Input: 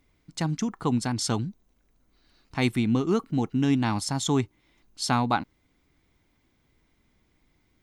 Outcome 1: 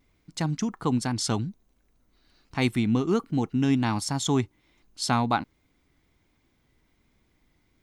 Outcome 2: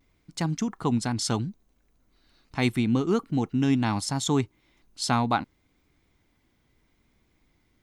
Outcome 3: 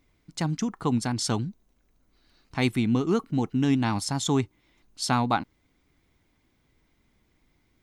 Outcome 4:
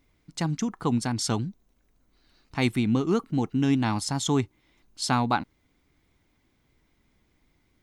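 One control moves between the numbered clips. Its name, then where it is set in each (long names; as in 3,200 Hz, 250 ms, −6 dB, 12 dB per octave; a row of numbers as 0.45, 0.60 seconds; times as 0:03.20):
pitch vibrato, speed: 1.3, 0.73, 8, 5.1 Hertz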